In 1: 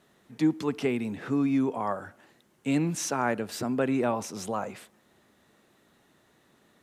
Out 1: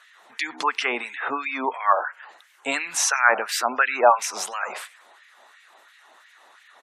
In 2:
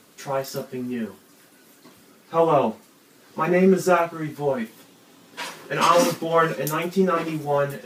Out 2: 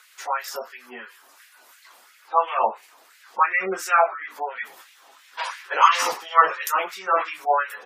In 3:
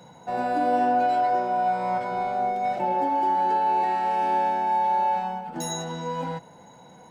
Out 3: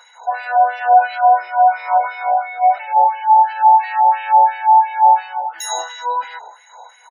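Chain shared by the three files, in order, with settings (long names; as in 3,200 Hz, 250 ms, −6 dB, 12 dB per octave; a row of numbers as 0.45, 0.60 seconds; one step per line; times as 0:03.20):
echo with shifted repeats 95 ms, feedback 50%, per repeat −65 Hz, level −20 dB
auto-filter high-pass sine 2.9 Hz 730–2,100 Hz
gate on every frequency bin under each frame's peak −25 dB strong
normalise the peak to −2 dBFS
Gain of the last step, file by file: +11.0, +0.5, +7.0 decibels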